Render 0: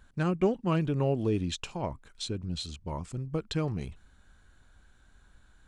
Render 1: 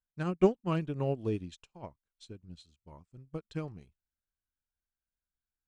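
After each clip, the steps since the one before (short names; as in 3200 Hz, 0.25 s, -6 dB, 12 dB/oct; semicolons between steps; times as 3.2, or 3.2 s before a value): upward expander 2.5:1, over -48 dBFS; gain +3.5 dB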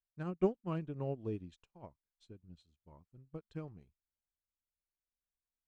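high shelf 2400 Hz -9.5 dB; gain -6.5 dB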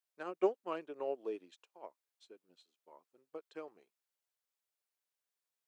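HPF 390 Hz 24 dB/oct; gain +4 dB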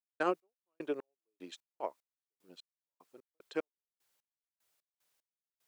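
step gate ".x..x..x" 75 bpm -60 dB; gain +12 dB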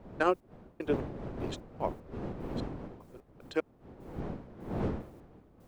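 wind noise 370 Hz -45 dBFS; gain +4.5 dB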